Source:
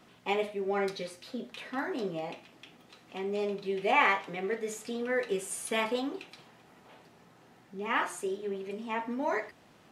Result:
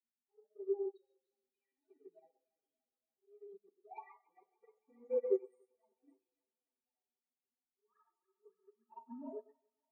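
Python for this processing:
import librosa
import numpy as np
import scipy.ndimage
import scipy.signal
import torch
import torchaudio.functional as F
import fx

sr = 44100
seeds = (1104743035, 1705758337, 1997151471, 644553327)

p1 = fx.spec_topn(x, sr, count=2)
p2 = scipy.signal.sosfilt(scipy.signal.butter(2, 5900.0, 'lowpass', fs=sr, output='sos'), p1)
p3 = fx.high_shelf(p2, sr, hz=2100.0, db=-7.5)
p4 = fx.auto_swell(p3, sr, attack_ms=435.0)
p5 = fx.env_flanger(p4, sr, rest_ms=8.6, full_db=-32.5)
p6 = scipy.signal.sosfilt(scipy.signal.butter(6, 220.0, 'highpass', fs=sr, output='sos'), p5)
p7 = p6 + fx.echo_thinned(p6, sr, ms=288, feedback_pct=77, hz=570.0, wet_db=-11.0, dry=0)
p8 = fx.rev_gated(p7, sr, seeds[0], gate_ms=170, shape='flat', drr_db=3.0)
p9 = fx.upward_expand(p8, sr, threshold_db=-52.0, expansion=2.5)
y = p9 * librosa.db_to_amplitude(2.0)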